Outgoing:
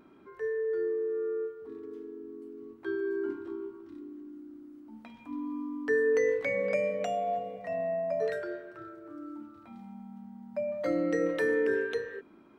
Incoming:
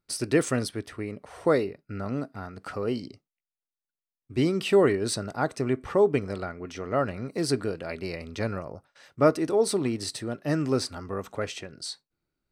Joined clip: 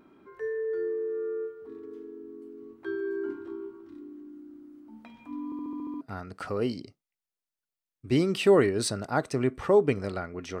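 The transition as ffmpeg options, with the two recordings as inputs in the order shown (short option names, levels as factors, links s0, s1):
-filter_complex "[0:a]apad=whole_dur=10.6,atrim=end=10.6,asplit=8[s0][s1][s2][s3][s4][s5][s6][s7];[s0]atrim=end=5.522[s8];[s1]atrim=start=5.448:end=5.522[s9];[s2]atrim=start=5.448:end=5.522[s10];[s3]atrim=start=5.448:end=5.522[s11];[s4]atrim=start=5.448:end=5.522[s12];[s5]atrim=start=5.448:end=5.522[s13];[s6]atrim=start=5.448:end=5.522[s14];[s7]atrim=start=5.448:end=5.522[s15];[1:a]atrim=start=2.268:end=6.86[s16];[s8][s9]acrossfade=d=0.004:c1=hsin:c2=hsin[s17];[s17][s10]acrossfade=d=0.004:c1=hsin:c2=hsin[s18];[s18][s11]acrossfade=d=0.004:c1=hsin:c2=hsin[s19];[s19][s12]acrossfade=d=0.004:c1=hsin:c2=hsin[s20];[s20][s13]acrossfade=d=0.004:c1=hsin:c2=hsin[s21];[s21][s14]acrossfade=d=0.004:c1=hsin:c2=hsin[s22];[s22][s15]acrossfade=d=0.004:c1=hsin:c2=hsin[s23];[s23][s16]acrossfade=d=0.004:c1=hsin:c2=hsin"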